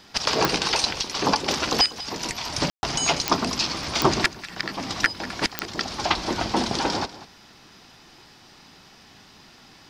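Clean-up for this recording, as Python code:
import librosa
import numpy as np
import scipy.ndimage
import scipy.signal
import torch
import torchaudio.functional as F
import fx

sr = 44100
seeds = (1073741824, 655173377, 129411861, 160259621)

y = fx.fix_declick_ar(x, sr, threshold=10.0)
y = fx.fix_ambience(y, sr, seeds[0], print_start_s=7.95, print_end_s=8.45, start_s=2.7, end_s=2.83)
y = fx.fix_echo_inverse(y, sr, delay_ms=193, level_db=-16.5)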